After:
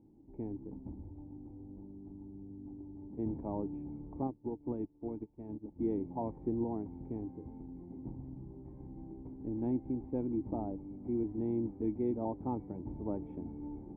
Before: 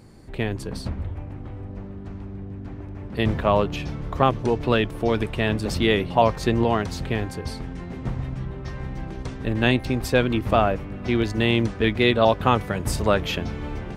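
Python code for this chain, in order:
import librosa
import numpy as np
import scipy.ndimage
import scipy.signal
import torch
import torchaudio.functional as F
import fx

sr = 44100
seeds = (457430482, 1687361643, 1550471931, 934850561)

y = fx.dynamic_eq(x, sr, hz=1800.0, q=1.2, threshold_db=-36.0, ratio=4.0, max_db=-4, at=(10.32, 11.16))
y = fx.formant_cascade(y, sr, vowel='u')
y = fx.upward_expand(y, sr, threshold_db=-42.0, expansion=2.5, at=(4.27, 5.79))
y = y * librosa.db_to_amplitude(-4.5)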